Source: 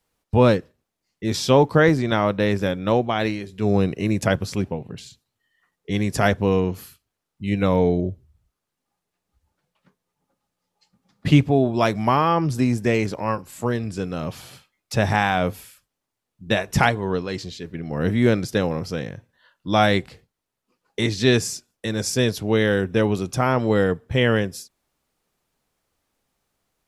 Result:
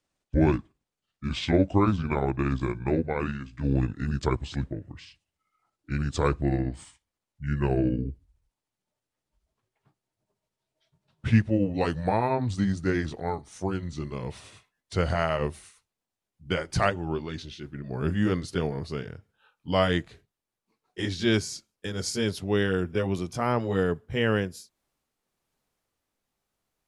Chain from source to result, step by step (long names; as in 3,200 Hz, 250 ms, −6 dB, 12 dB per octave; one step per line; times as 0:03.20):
pitch glide at a constant tempo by −8 semitones ending unshifted
level −5 dB